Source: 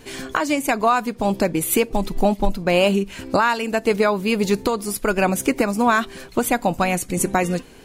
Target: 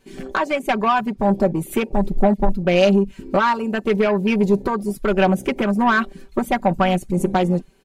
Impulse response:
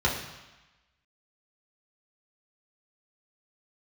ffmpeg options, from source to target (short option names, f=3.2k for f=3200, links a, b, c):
-af "afwtdn=0.0447,asoftclip=type=tanh:threshold=-12.5dB,aecho=1:1:5.2:0.7,volume=1dB"